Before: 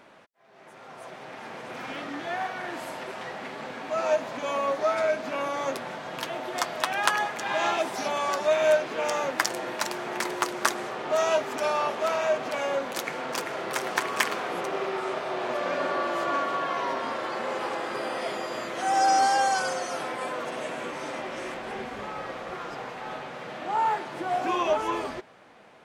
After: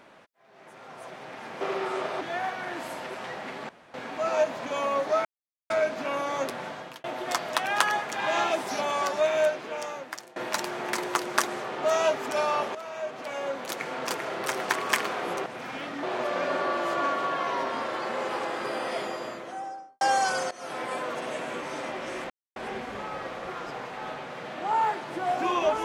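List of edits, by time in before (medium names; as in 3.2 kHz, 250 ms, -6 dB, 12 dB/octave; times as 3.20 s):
1.61–2.18 s: swap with 14.73–15.33 s
3.66 s: insert room tone 0.25 s
4.97 s: insert silence 0.45 s
5.99–6.31 s: fade out
8.31–9.63 s: fade out, to -22 dB
12.02–13.32 s: fade in, from -14.5 dB
18.24–19.31 s: studio fade out
19.81–20.13 s: fade in, from -19 dB
21.60 s: insert silence 0.26 s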